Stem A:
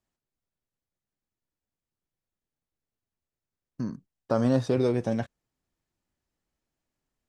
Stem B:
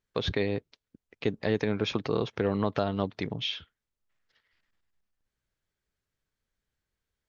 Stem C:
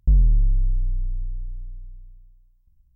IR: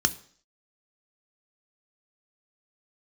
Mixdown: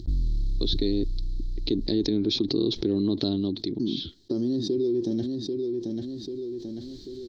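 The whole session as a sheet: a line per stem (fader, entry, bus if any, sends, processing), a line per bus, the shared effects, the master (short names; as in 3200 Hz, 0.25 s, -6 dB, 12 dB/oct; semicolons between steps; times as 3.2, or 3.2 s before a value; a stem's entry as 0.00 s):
-12.5 dB, 0.00 s, no send, echo send -13.5 dB, compressor, threshold -25 dBFS, peak gain reduction 7 dB; small resonant body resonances 380/1800/3200 Hz, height 9 dB
-5.5 dB, 0.45 s, no send, no echo send, auto duck -17 dB, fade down 0.50 s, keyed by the first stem
-11.0 dB, 0.00 s, no send, no echo send, half-wave gain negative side -3 dB; modulation noise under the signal 35 dB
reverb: off
echo: feedback echo 0.79 s, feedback 17%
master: EQ curve 170 Hz 0 dB, 340 Hz +14 dB, 480 Hz -8 dB, 1400 Hz -20 dB, 2700 Hz -12 dB, 4100 Hz +14 dB, 9800 Hz -17 dB; fast leveller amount 70%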